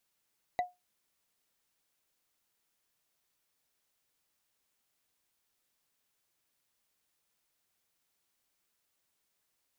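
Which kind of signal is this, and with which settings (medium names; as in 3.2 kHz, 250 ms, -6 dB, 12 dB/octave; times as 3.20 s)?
wood hit, lowest mode 720 Hz, decay 0.20 s, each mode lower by 8.5 dB, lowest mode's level -23.5 dB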